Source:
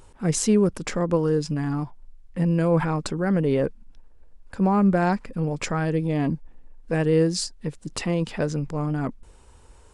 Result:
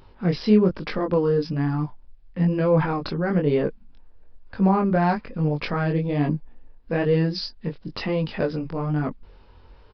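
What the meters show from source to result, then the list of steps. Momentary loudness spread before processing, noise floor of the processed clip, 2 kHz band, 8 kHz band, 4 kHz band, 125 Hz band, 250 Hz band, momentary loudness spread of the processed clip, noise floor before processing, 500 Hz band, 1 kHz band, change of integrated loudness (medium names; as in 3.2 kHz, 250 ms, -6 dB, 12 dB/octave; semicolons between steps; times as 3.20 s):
10 LU, -50 dBFS, +1.0 dB, under -25 dB, 0.0 dB, +0.5 dB, +0.5 dB, 12 LU, -51 dBFS, +1.0 dB, +1.5 dB, +0.5 dB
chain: chorus 1.1 Hz, delay 19.5 ms, depth 4.6 ms; resampled via 11.025 kHz; trim +4 dB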